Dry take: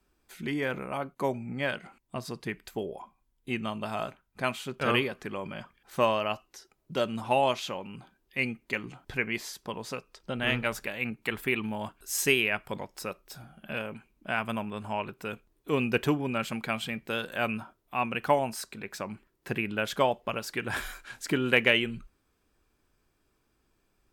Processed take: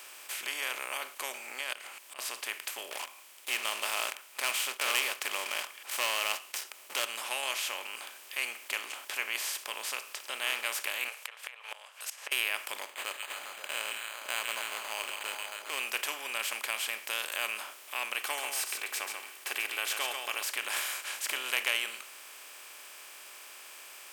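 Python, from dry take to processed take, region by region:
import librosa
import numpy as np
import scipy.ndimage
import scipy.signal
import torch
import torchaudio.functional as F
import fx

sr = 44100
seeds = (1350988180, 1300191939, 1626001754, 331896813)

y = fx.chain(x, sr, fx.over_compress(threshold_db=-34.0, ratio=-1.0),
    fx.auto_swell(attack_ms=511.0), at=(1.44, 2.19))
y = fx.chain(y, sr, fx.leveller(passes=2),
    fx.notch(hz=1600.0, q=13.0), at=(2.91, 7.05))
y = fx.chain(y, sr, fx.brickwall_highpass(low_hz=440.0),
    fx.env_lowpass_down(base_hz=1100.0, full_db=-26.5),
    fx.gate_flip(shuts_db=-31.0, range_db=-31), at=(11.08, 12.32))
y = fx.chain(y, sr, fx.echo_stepped(ms=135, hz=2600.0, octaves=-0.7, feedback_pct=70, wet_db=-4.5),
    fx.resample_linear(factor=8), at=(12.82, 15.79))
y = fx.chain(y, sr, fx.comb(ms=2.6, depth=0.59),
    fx.echo_single(ms=137, db=-12.0), at=(18.17, 20.43))
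y = fx.bin_compress(y, sr, power=0.4)
y = scipy.signal.sosfilt(scipy.signal.butter(2, 350.0, 'highpass', fs=sr, output='sos'), y)
y = np.diff(y, prepend=0.0)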